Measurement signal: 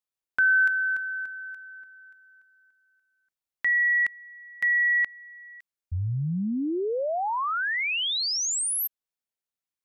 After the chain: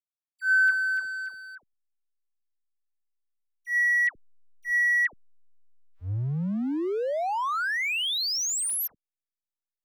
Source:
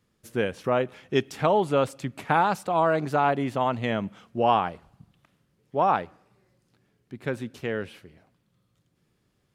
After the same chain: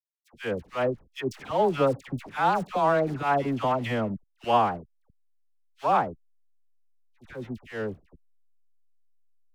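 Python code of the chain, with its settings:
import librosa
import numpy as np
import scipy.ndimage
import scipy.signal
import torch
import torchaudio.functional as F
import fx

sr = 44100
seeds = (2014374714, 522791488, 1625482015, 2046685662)

y = fx.backlash(x, sr, play_db=-34.5)
y = fx.auto_swell(y, sr, attack_ms=108.0)
y = fx.dispersion(y, sr, late='lows', ms=90.0, hz=1100.0)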